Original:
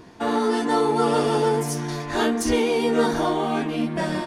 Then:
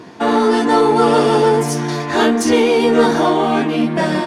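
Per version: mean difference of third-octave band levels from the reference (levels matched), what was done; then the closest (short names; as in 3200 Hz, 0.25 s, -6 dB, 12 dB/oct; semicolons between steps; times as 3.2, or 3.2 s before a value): 1.5 dB: HPF 140 Hz; high shelf 9400 Hz -9 dB; in parallel at -6 dB: soft clip -22 dBFS, distortion -11 dB; on the sum: gain +6 dB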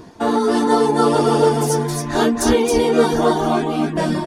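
3.0 dB: reverb removal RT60 0.73 s; bell 2300 Hz -6 dB 1.3 oct; echo 0.271 s -3.5 dB; gain +6.5 dB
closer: first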